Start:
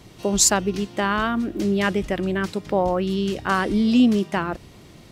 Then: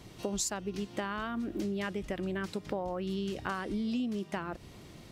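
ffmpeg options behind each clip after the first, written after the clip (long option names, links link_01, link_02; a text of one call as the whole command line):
ffmpeg -i in.wav -af "acompressor=threshold=-27dB:ratio=6,volume=-4.5dB" out.wav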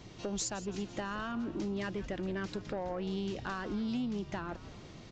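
ffmpeg -i in.wav -filter_complex "[0:a]aresample=16000,asoftclip=type=tanh:threshold=-28.5dB,aresample=44100,asplit=6[link_01][link_02][link_03][link_04][link_05][link_06];[link_02]adelay=167,afreqshift=-78,volume=-15.5dB[link_07];[link_03]adelay=334,afreqshift=-156,volume=-20.5dB[link_08];[link_04]adelay=501,afreqshift=-234,volume=-25.6dB[link_09];[link_05]adelay=668,afreqshift=-312,volume=-30.6dB[link_10];[link_06]adelay=835,afreqshift=-390,volume=-35.6dB[link_11];[link_01][link_07][link_08][link_09][link_10][link_11]amix=inputs=6:normalize=0" out.wav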